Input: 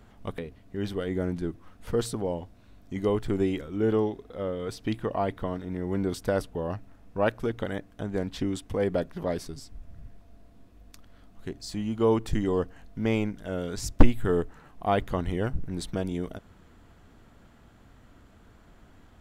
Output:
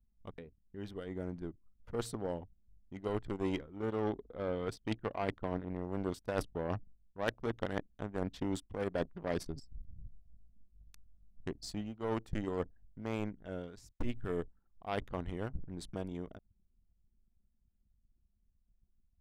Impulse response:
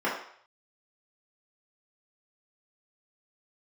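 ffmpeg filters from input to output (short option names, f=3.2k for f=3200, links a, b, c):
-af "anlmdn=0.158,dynaudnorm=f=820:g=7:m=14dB,aeval=exprs='0.944*(cos(1*acos(clip(val(0)/0.944,-1,1)))-cos(1*PI/2))+0.015*(cos(5*acos(clip(val(0)/0.944,-1,1)))-cos(5*PI/2))+0.106*(cos(7*acos(clip(val(0)/0.944,-1,1)))-cos(7*PI/2))':c=same,areverse,acompressor=threshold=-28dB:ratio=12,areverse,volume=-3dB"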